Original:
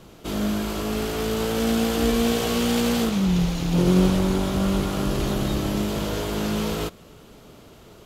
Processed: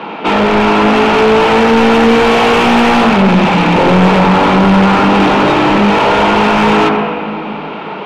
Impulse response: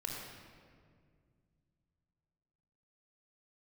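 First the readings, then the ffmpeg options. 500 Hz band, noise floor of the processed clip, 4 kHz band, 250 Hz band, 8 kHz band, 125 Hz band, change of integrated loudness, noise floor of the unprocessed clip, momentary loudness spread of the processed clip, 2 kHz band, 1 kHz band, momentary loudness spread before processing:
+15.5 dB, -23 dBFS, +13.0 dB, +12.5 dB, +1.5 dB, +9.0 dB, +14.5 dB, -48 dBFS, 7 LU, +21.0 dB, +23.0 dB, 7 LU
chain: -filter_complex "[0:a]highpass=f=190:w=0.5412,highpass=f=190:w=1.3066,equalizer=f=200:t=q:w=4:g=5,equalizer=f=370:t=q:w=4:g=-6,equalizer=f=550:t=q:w=4:g=-6,equalizer=f=870:t=q:w=4:g=7,equalizer=f=2500:t=q:w=4:g=9,lowpass=f=3800:w=0.5412,lowpass=f=3800:w=1.3066,aeval=exprs='clip(val(0),-1,0.0596)':c=same,asplit=2[s0][s1];[1:a]atrim=start_sample=2205,lowpass=2400[s2];[s1][s2]afir=irnorm=-1:irlink=0,volume=0.75[s3];[s0][s3]amix=inputs=2:normalize=0,asplit=2[s4][s5];[s5]highpass=f=720:p=1,volume=44.7,asoftclip=type=tanh:threshold=0.944[s6];[s4][s6]amix=inputs=2:normalize=0,lowpass=f=1400:p=1,volume=0.501,volume=1.19"

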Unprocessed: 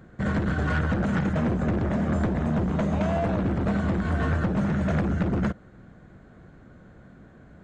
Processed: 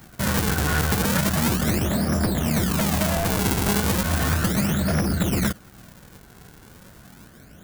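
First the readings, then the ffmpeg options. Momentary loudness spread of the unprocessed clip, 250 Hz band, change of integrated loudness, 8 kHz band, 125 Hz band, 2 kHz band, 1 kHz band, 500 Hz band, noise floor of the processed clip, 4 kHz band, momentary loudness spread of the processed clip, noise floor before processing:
1 LU, +1.5 dB, +3.5 dB, no reading, +2.0 dB, +5.5 dB, +4.0 dB, +1.5 dB, -48 dBFS, +16.5 dB, 2 LU, -51 dBFS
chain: -filter_complex "[0:a]acrossover=split=540|3700[s0][s1][s2];[s0]acrusher=samples=41:mix=1:aa=0.000001:lfo=1:lforange=65.6:lforate=0.35[s3];[s3][s1][s2]amix=inputs=3:normalize=0,crystalizer=i=2.5:c=0,volume=1.26"

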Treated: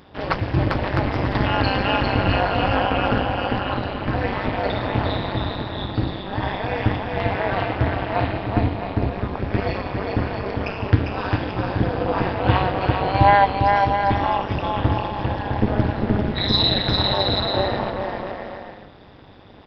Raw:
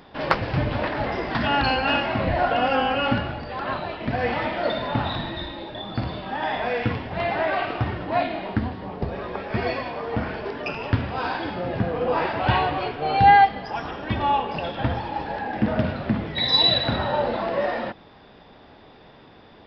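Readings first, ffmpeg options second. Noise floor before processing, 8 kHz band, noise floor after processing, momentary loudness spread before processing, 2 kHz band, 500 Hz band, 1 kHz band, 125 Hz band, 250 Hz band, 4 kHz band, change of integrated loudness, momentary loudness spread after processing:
-49 dBFS, no reading, -42 dBFS, 11 LU, +0.5 dB, +2.0 dB, +1.0 dB, +6.5 dB, +4.0 dB, +1.0 dB, +2.0 dB, 9 LU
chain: -filter_complex "[0:a]equalizer=f=72:t=o:w=2.5:g=8,asplit=2[s0][s1];[s1]aecho=0:1:400|660|829|938.8|1010:0.631|0.398|0.251|0.158|0.1[s2];[s0][s2]amix=inputs=2:normalize=0,tremolo=f=200:d=0.919,volume=1.33"

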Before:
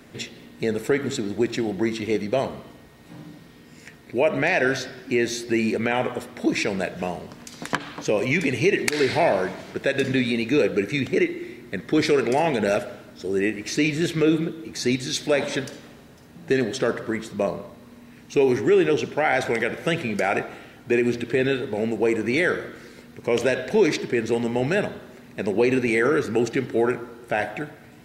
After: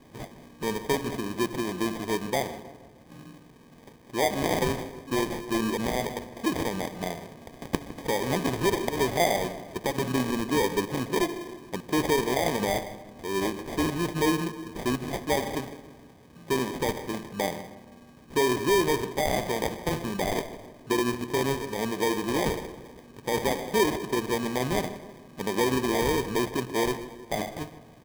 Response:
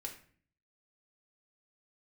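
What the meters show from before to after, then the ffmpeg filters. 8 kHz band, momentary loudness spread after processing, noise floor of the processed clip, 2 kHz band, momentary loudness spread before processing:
+0.5 dB, 13 LU, -52 dBFS, -7.0 dB, 12 LU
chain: -filter_complex "[0:a]acrusher=samples=32:mix=1:aa=0.000001,asplit=2[s0][s1];[s1]adelay=157,lowpass=f=1900:p=1,volume=0.178,asplit=2[s2][s3];[s3]adelay=157,lowpass=f=1900:p=1,volume=0.52,asplit=2[s4][s5];[s5]adelay=157,lowpass=f=1900:p=1,volume=0.52,asplit=2[s6][s7];[s7]adelay=157,lowpass=f=1900:p=1,volume=0.52,asplit=2[s8][s9];[s9]adelay=157,lowpass=f=1900:p=1,volume=0.52[s10];[s0][s2][s4][s6][s8][s10]amix=inputs=6:normalize=0,volume=0.562"

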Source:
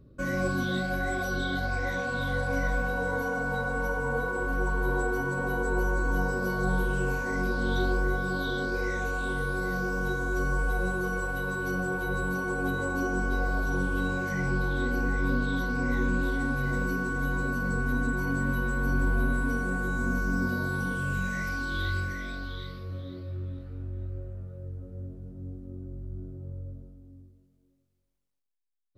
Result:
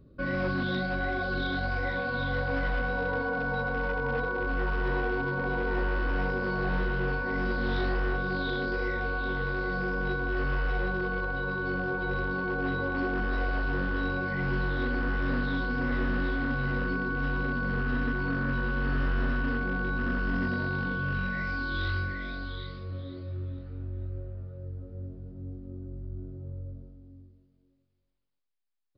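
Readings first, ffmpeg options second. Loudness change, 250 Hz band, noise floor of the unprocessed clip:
-1.0 dB, -1.5 dB, -66 dBFS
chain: -af "bandreject=f=60:t=h:w=6,bandreject=f=120:t=h:w=6,bandreject=f=180:t=h:w=6,aresample=11025,volume=15,asoftclip=hard,volume=0.0668,aresample=44100"

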